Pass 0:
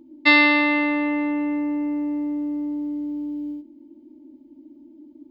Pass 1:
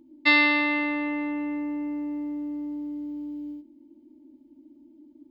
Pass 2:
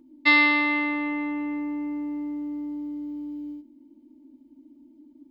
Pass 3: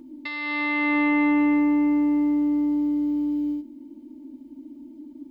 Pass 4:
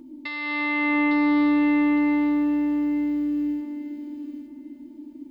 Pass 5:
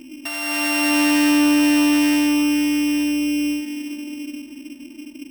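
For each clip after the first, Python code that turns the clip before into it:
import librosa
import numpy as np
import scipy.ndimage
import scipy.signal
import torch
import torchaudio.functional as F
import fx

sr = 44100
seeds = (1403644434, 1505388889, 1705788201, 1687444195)

y1 = fx.peak_eq(x, sr, hz=480.0, db=-3.5, octaves=2.0)
y1 = y1 * 10.0 ** (-3.5 / 20.0)
y2 = y1 + 0.36 * np.pad(y1, (int(4.3 * sr / 1000.0), 0))[:len(y1)]
y3 = fx.over_compress(y2, sr, threshold_db=-29.0, ratio=-1.0)
y3 = y3 * 10.0 ** (7.0 / 20.0)
y4 = fx.echo_thinned(y3, sr, ms=857, feedback_pct=25, hz=580.0, wet_db=-4)
y5 = np.r_[np.sort(y4[:len(y4) // 16 * 16].reshape(-1, 16), axis=1).ravel(), y4[len(y4) // 16 * 16:]]
y5 = y5 * 10.0 ** (4.0 / 20.0)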